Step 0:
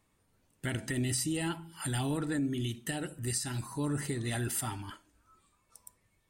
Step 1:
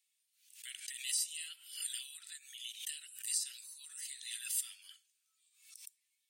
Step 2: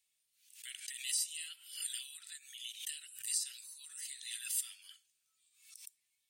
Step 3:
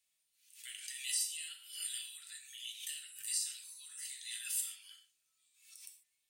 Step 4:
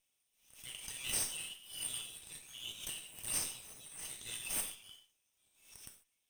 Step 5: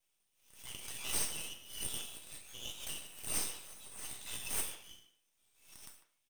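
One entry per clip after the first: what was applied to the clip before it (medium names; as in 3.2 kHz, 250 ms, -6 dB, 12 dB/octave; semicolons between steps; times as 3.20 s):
inverse Chebyshev high-pass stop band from 610 Hz, stop band 70 dB; swell ahead of each attack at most 97 dB/s; trim -1 dB
bass shelf 200 Hz +8.5 dB
gated-style reverb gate 170 ms falling, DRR 1.5 dB; trim -2 dB
comb filter that takes the minimum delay 0.35 ms; trim +1 dB
half-wave rectifier; speakerphone echo 150 ms, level -12 dB; trim +5 dB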